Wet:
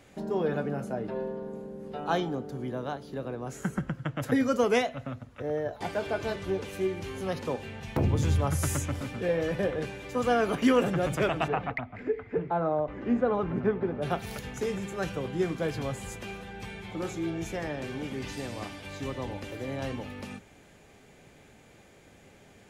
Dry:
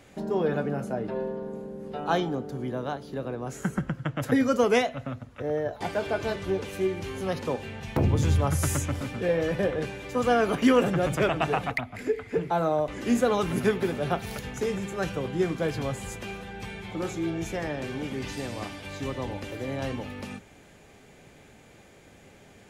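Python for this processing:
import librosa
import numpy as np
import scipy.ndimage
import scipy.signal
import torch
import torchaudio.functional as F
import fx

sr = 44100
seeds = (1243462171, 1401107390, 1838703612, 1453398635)

y = fx.lowpass(x, sr, hz=fx.line((11.47, 2400.0), (14.01, 1200.0)), slope=12, at=(11.47, 14.01), fade=0.02)
y = y * 10.0 ** (-2.5 / 20.0)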